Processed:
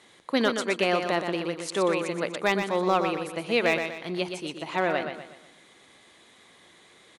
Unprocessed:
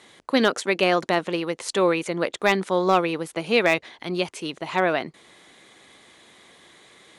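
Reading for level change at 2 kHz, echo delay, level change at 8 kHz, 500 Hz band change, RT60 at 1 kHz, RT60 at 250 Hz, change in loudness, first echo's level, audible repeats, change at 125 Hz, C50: −3.5 dB, 122 ms, −3.5 dB, −3.5 dB, no reverb audible, no reverb audible, −3.5 dB, −7.0 dB, 4, −3.5 dB, no reverb audible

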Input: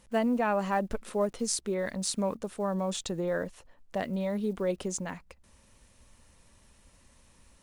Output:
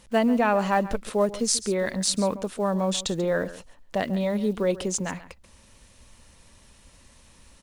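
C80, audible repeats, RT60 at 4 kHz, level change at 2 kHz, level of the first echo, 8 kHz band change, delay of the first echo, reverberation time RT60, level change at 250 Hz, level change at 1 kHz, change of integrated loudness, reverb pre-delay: no reverb audible, 1, no reverb audible, +6.5 dB, −16.0 dB, +7.0 dB, 138 ms, no reverb audible, +5.5 dB, +6.0 dB, +6.0 dB, no reverb audible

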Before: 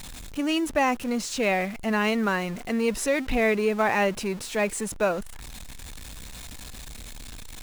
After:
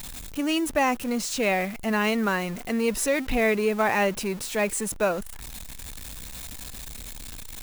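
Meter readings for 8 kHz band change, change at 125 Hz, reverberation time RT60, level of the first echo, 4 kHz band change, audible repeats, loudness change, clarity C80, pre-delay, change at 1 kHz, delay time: +3.0 dB, 0.0 dB, no reverb audible, no echo audible, +0.5 dB, no echo audible, +0.5 dB, no reverb audible, no reverb audible, 0.0 dB, no echo audible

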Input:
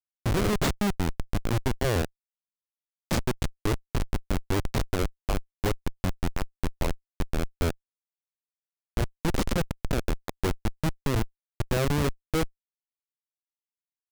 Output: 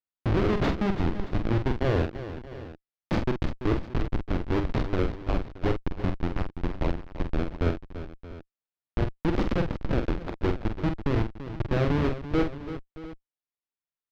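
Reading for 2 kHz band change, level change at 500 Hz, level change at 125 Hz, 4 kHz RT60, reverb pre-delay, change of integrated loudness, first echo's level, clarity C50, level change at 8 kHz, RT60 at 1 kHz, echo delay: −1.0 dB, +2.0 dB, +1.0 dB, no reverb audible, no reverb audible, +1.0 dB, −6.5 dB, no reverb audible, below −15 dB, no reverb audible, 46 ms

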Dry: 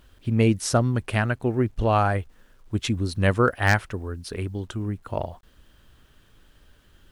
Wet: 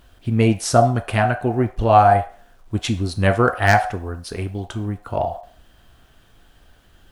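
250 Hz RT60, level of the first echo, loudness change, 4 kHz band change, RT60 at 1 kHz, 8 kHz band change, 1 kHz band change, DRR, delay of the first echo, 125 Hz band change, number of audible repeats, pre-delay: 0.45 s, no echo audible, +5.0 dB, +3.5 dB, 0.40 s, +3.5 dB, +10.0 dB, 1.5 dB, no echo audible, +3.0 dB, no echo audible, 4 ms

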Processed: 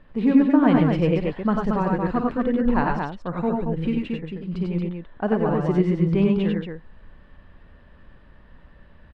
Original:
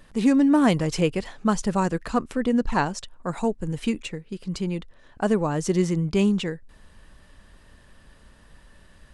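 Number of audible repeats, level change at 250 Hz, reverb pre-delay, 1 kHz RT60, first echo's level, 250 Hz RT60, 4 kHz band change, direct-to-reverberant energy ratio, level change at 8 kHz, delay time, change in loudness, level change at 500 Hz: 3, +2.5 dB, no reverb audible, no reverb audible, −12.0 dB, no reverb audible, −6.0 dB, no reverb audible, below −20 dB, 52 ms, +2.0 dB, +2.0 dB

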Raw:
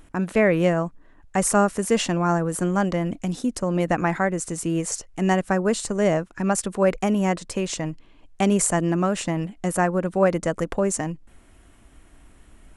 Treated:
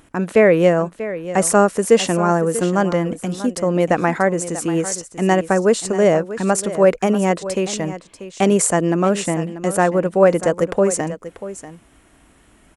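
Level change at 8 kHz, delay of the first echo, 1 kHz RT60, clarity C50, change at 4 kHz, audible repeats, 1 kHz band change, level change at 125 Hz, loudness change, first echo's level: +4.0 dB, 639 ms, no reverb audible, no reverb audible, +4.0 dB, 1, +5.0 dB, +2.5 dB, +5.5 dB, −13.5 dB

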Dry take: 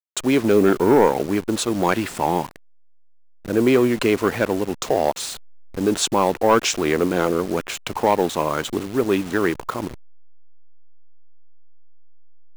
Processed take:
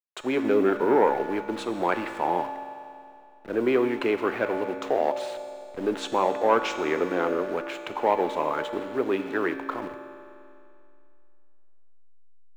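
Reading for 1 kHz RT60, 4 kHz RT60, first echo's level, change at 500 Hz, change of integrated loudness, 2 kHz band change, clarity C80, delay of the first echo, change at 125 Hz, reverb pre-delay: 2.5 s, 2.5 s, no echo audible, −5.0 dB, −6.0 dB, −4.5 dB, 8.5 dB, no echo audible, −15.0 dB, 3 ms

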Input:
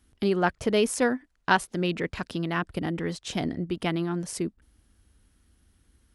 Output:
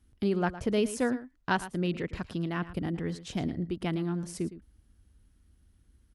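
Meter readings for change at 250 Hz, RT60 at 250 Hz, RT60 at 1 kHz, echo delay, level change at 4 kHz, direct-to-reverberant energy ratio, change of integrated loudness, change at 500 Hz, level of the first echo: −2.0 dB, no reverb audible, no reverb audible, 111 ms, −7.5 dB, no reverb audible, −4.0 dB, −4.5 dB, −14.5 dB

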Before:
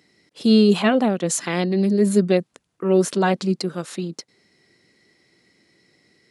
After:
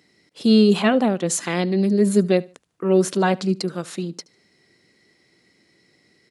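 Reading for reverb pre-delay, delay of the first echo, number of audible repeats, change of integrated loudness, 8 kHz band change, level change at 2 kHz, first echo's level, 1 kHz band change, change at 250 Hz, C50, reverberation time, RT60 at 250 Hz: no reverb audible, 74 ms, 2, 0.0 dB, 0.0 dB, 0.0 dB, −23.0 dB, 0.0 dB, 0.0 dB, no reverb audible, no reverb audible, no reverb audible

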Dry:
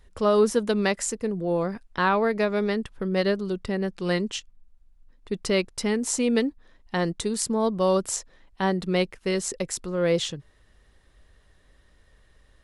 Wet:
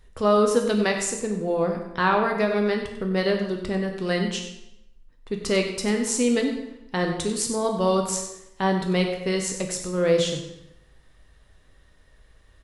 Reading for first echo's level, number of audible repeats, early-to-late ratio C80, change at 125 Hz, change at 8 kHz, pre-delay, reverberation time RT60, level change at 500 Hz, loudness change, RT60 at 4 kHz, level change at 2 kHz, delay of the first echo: −11.5 dB, 1, 7.0 dB, +2.0 dB, +2.0 dB, 6 ms, 0.85 s, +1.5 dB, +1.5 dB, 0.75 s, +2.0 dB, 95 ms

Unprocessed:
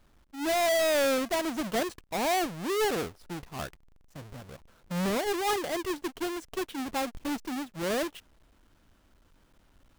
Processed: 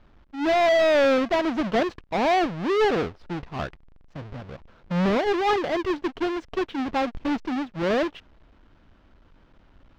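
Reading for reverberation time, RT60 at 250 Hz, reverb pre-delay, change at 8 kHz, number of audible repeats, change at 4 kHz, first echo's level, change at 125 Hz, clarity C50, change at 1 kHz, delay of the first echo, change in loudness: no reverb audible, no reverb audible, no reverb audible, can't be measured, no echo audible, +2.0 dB, no echo audible, +7.5 dB, no reverb audible, +6.5 dB, no echo audible, +6.0 dB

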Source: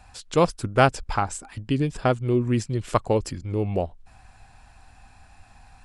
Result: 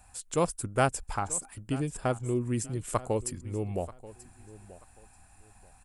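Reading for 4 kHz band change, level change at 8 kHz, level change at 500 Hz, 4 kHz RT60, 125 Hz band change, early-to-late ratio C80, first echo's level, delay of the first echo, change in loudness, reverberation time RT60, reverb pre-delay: −9.0 dB, +3.5 dB, −7.5 dB, no reverb audible, −7.5 dB, no reverb audible, −18.0 dB, 934 ms, −7.0 dB, no reverb audible, no reverb audible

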